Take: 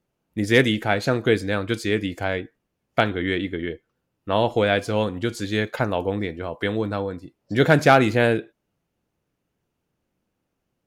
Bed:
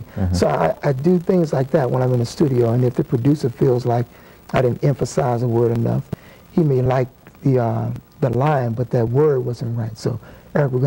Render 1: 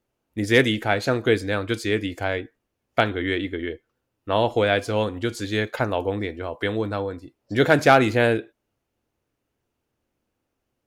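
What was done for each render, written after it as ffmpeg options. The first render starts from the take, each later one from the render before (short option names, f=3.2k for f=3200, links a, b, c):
-af "equalizer=f=170:t=o:w=0.27:g=-15"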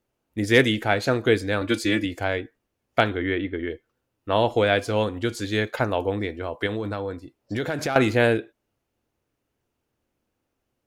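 -filter_complex "[0:a]asettb=1/sr,asplit=3[a][b][c];[a]atrim=end=1.614[d];[b]atrim=start=1.61:end=2.05,asetpts=PTS-STARTPTS,afade=t=in:d=0.004:c=qsin,afade=t=out:st=0.436:d=0.004:c=qsin,aecho=1:1:3.5:0.91,atrim=end_sample=19404[e];[c]atrim=start=2.046[f];[d][e]acrossfade=d=0.004:c1=hsin:c2=qsin[g];[g][f]acrossfade=d=0.004:c1=qsin:c2=hsin,asettb=1/sr,asplit=3[h][i][j];[h]atrim=end=3.174[k];[i]atrim=start=3.17:end=3.7,asetpts=PTS-STARTPTS,afade=t=in:d=0.004:c=qsin,afade=t=out:st=0.526:d=0.004:c=qsin,lowpass=2.5k[l];[j]atrim=start=3.696[m];[k][l]acrossfade=d=0.004:c1=hsin:c2=qsin[n];[n][m]acrossfade=d=0.004:c1=qsin:c2=hsin,asettb=1/sr,asplit=3[o][p][q];[o]atrim=end=6.664[r];[p]atrim=start=6.66:end=7.96,asetpts=PTS-STARTPTS,afade=t=in:d=0.004:c=qsin,afade=t=out:st=1.296:d=0.004:c=qsin,acompressor=threshold=-23dB:ratio=6:attack=3.2:release=140:knee=1:detection=peak[s];[q]atrim=start=7.956[t];[r][s]acrossfade=d=0.004:c1=hsin:c2=qsin[u];[u][t]acrossfade=d=0.004:c1=qsin:c2=hsin"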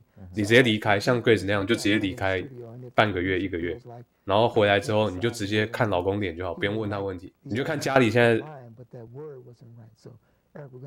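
-filter_complex "[1:a]volume=-24.5dB[a];[0:a][a]amix=inputs=2:normalize=0"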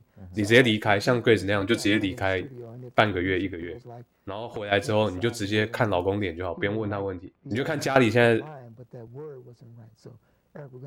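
-filter_complex "[0:a]asplit=3[a][b][c];[a]afade=t=out:st=3.5:d=0.02[d];[b]acompressor=threshold=-30dB:ratio=6:attack=3.2:release=140:knee=1:detection=peak,afade=t=in:st=3.5:d=0.02,afade=t=out:st=4.71:d=0.02[e];[c]afade=t=in:st=4.71:d=0.02[f];[d][e][f]amix=inputs=3:normalize=0,asettb=1/sr,asplit=3[g][h][i];[g]atrim=end=6.464[j];[h]atrim=start=6.46:end=7.51,asetpts=PTS-STARTPTS,afade=t=in:d=0.004:c=qsin,afade=t=out:st=1.046:d=0.004:c=qsin,lowpass=2.7k[k];[i]atrim=start=7.506[l];[j][k]acrossfade=d=0.004:c1=hsin:c2=qsin[m];[m][l]acrossfade=d=0.004:c1=qsin:c2=hsin"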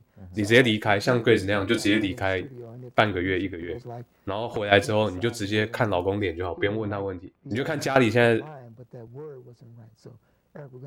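-filter_complex "[0:a]asettb=1/sr,asplit=3[a][b][c];[a]atrim=end=1.054[d];[b]atrim=start=1.05:end=2.12,asetpts=PTS-STARTPTS,afade=t=in:d=0.004:c=qsin,afade=t=out:st=1.066:d=0.004:c=qsin,asplit=2[e][f];[f]adelay=33,volume=-9dB[g];[e][g]amix=inputs=2:normalize=0,atrim=end_sample=47187[h];[c]atrim=start=2.116[i];[d][h]acrossfade=d=0.004:c1=hsin:c2=qsin[j];[j][i]acrossfade=d=0.004:c1=qsin:c2=hsin,asettb=1/sr,asplit=3[k][l][m];[k]atrim=end=6.214[n];[l]atrim=start=6.21:end=6.7,asetpts=PTS-STARTPTS,afade=t=in:d=0.004:c=qsin,afade=t=out:st=0.486:d=0.004:c=qsin,aecho=1:1:2.5:0.65,atrim=end_sample=21609[o];[m]atrim=start=6.696[p];[n][o]acrossfade=d=0.004:c1=hsin:c2=qsin[q];[q][p]acrossfade=d=0.004:c1=qsin:c2=hsin,asplit=3[r][s][t];[r]atrim=end=3.692[u];[s]atrim=start=3.688:end=4.852,asetpts=PTS-STARTPTS,volume=5dB[v];[t]atrim=start=4.848[w];[u][v]acrossfade=d=0.004:c1=hsin:c2=hsin[x];[x][w]acrossfade=d=0.004:c1=hsin:c2=hsin"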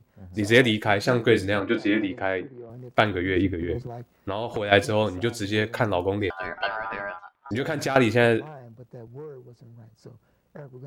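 -filter_complex "[0:a]asettb=1/sr,asplit=3[a][b][c];[a]atrim=end=1.604[d];[b]atrim=start=1.6:end=2.7,asetpts=PTS-STARTPTS,afade=t=in:d=0.004:c=qsin,afade=t=out:st=1.096:d=0.004:c=qsin,highpass=160,lowpass=2.4k[e];[c]atrim=start=2.696[f];[d][e]acrossfade=d=0.004:c1=hsin:c2=qsin[g];[g][f]acrossfade=d=0.004:c1=qsin:c2=hsin,asettb=1/sr,asplit=3[h][i][j];[h]atrim=end=3.364[k];[i]atrim=start=3.36:end=3.87,asetpts=PTS-STARTPTS,afade=t=in:d=0.004:c=qsin,afade=t=out:st=0.506:d=0.004:c=qsin,lowshelf=f=370:g=9.5[l];[j]atrim=start=3.866[m];[k][l]acrossfade=d=0.004:c1=hsin:c2=qsin[n];[n][m]acrossfade=d=0.004:c1=qsin:c2=hsin,asettb=1/sr,asplit=3[o][p][q];[o]atrim=end=6.304[r];[p]atrim=start=6.3:end=7.51,asetpts=PTS-STARTPTS,afade=t=in:d=0.004:c=qsin,afade=t=out:st=1.206:d=0.004:c=qsin,aeval=exprs='val(0)*sin(2*PI*1100*n/s)':c=same[s];[q]atrim=start=7.506[t];[r][s]acrossfade=d=0.004:c1=hsin:c2=qsin[u];[u][t]acrossfade=d=0.004:c1=qsin:c2=hsin"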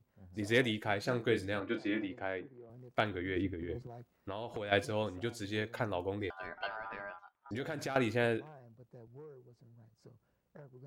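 -af "volume=-12dB"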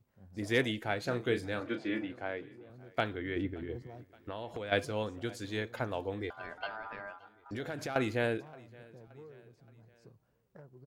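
-af "aecho=1:1:573|1146|1719:0.0668|0.0327|0.016"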